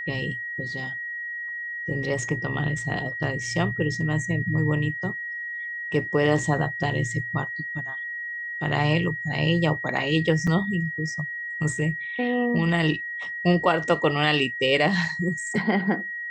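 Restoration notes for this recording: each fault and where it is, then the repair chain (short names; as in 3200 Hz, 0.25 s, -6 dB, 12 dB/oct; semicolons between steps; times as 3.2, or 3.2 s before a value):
tone 1900 Hz -30 dBFS
10.47 gap 4.7 ms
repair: notch 1900 Hz, Q 30; interpolate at 10.47, 4.7 ms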